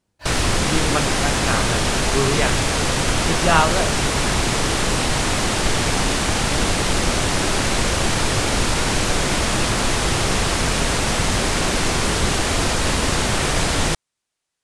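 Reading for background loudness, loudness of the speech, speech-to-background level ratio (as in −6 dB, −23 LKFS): −19.5 LKFS, −24.0 LKFS, −4.5 dB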